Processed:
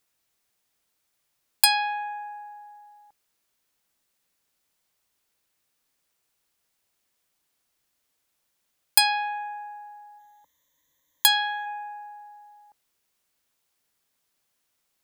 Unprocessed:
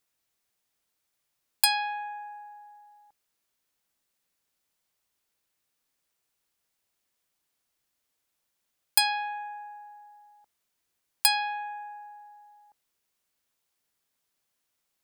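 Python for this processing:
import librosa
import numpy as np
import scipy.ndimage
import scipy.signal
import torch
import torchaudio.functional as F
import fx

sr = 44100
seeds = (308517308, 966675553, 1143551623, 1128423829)

y = fx.ripple_eq(x, sr, per_octave=1.1, db=17, at=(10.18, 11.65), fade=0.02)
y = F.gain(torch.from_numpy(y), 4.0).numpy()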